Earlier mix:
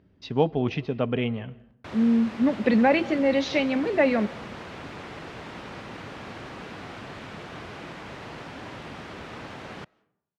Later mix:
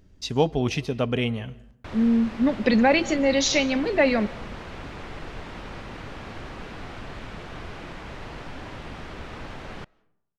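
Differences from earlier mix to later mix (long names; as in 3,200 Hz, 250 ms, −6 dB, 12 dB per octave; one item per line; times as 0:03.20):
speech: remove high-frequency loss of the air 290 metres
master: remove high-pass filter 110 Hz 12 dB per octave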